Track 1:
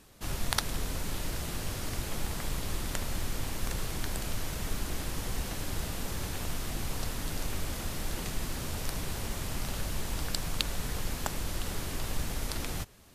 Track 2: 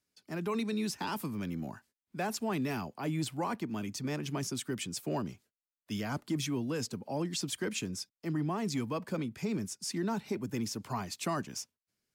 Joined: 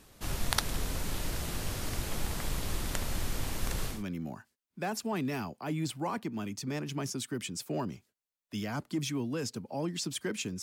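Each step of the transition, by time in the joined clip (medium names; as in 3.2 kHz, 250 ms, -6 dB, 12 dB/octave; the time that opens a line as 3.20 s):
track 1
3.95 s: go over to track 2 from 1.32 s, crossfade 0.18 s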